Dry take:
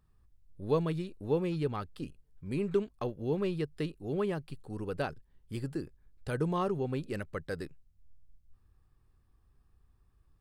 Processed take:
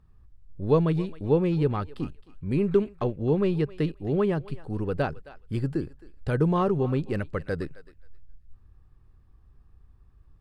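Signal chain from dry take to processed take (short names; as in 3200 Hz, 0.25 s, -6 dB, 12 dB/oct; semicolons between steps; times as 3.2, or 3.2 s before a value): LPF 2700 Hz 6 dB/oct; low shelf 180 Hz +5 dB; thinning echo 0.266 s, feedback 20%, high-pass 700 Hz, level -16 dB; gain +6.5 dB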